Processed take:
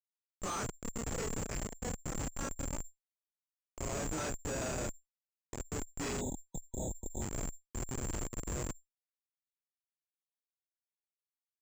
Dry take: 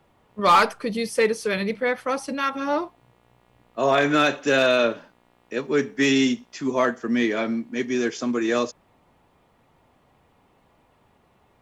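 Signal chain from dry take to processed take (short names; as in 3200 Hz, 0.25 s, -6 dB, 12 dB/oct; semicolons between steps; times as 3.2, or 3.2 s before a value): short-time reversal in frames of 78 ms; tilt +3 dB/oct; in parallel at -2 dB: negative-ratio compressor -34 dBFS, ratio -1; on the sum: Schmitt trigger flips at -18.5 dBFS; tube stage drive 42 dB, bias 0.35; spectral gain 6.2–7.21, 960–3400 Hz -28 dB; careless resampling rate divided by 6×, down filtered, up zero stuff; air absorption 130 m; gain +5.5 dB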